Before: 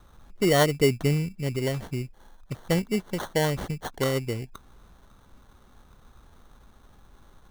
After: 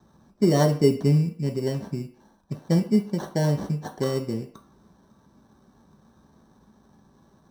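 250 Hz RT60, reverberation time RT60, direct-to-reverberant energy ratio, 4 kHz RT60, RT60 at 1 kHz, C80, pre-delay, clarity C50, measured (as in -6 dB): 0.40 s, 0.50 s, 1.0 dB, 0.45 s, 0.50 s, 15.0 dB, 3 ms, 12.0 dB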